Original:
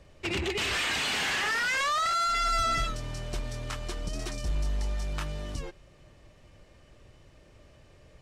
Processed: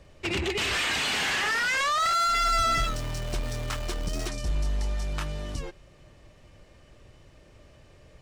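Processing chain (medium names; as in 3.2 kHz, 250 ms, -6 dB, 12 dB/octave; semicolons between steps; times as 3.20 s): 2.00–4.28 s: jump at every zero crossing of -39 dBFS; trim +2 dB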